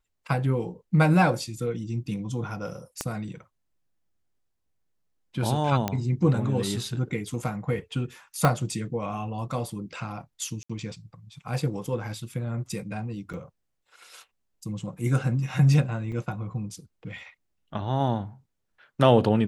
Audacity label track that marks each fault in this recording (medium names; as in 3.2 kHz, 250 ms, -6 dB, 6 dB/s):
3.010000	3.010000	pop -13 dBFS
5.880000	5.880000	pop -11 dBFS
8.450000	8.450000	pop -8 dBFS
10.630000	10.700000	dropout 65 ms
13.330000	13.340000	dropout 6.7 ms
16.120000	16.120000	dropout 4.8 ms